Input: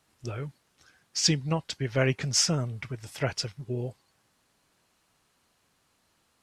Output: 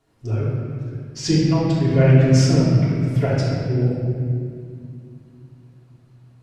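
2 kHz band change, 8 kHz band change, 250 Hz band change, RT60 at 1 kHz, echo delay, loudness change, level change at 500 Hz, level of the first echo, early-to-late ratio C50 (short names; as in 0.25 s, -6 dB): +3.0 dB, -3.5 dB, +14.5 dB, 2.0 s, none, +10.0 dB, +10.5 dB, none, -2.0 dB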